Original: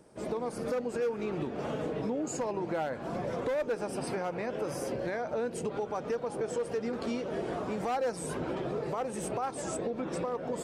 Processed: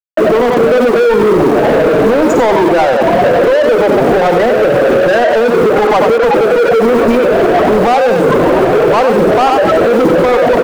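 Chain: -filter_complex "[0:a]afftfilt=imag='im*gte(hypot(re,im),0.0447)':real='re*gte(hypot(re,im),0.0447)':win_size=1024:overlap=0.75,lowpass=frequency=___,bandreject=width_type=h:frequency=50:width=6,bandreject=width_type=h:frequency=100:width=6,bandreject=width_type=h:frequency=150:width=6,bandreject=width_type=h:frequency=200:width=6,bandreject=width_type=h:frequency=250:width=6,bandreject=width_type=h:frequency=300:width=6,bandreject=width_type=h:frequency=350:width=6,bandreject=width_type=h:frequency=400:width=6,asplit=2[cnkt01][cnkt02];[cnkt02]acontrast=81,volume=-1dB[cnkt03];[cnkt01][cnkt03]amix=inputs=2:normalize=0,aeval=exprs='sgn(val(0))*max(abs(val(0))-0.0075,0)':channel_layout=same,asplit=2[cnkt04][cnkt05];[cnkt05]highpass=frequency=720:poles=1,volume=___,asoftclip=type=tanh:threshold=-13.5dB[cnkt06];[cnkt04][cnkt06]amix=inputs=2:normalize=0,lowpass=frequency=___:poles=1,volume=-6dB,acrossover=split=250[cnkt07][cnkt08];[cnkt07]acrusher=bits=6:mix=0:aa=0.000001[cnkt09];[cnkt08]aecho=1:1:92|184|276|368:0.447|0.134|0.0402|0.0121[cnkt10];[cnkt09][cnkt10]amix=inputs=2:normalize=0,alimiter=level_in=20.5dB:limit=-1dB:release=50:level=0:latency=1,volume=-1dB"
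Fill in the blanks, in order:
2800, 27dB, 2000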